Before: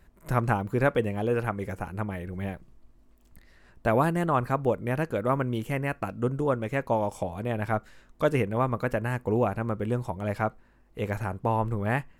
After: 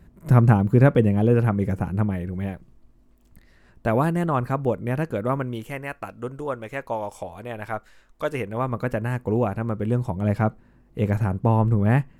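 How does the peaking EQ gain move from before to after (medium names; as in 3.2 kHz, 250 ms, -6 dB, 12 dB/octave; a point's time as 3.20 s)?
peaking EQ 150 Hz 2.7 oct
1.91 s +13.5 dB
2.52 s +4.5 dB
5.26 s +4.5 dB
5.82 s -7.5 dB
8.27 s -7.5 dB
8.81 s +4.5 dB
9.73 s +4.5 dB
10.29 s +11.5 dB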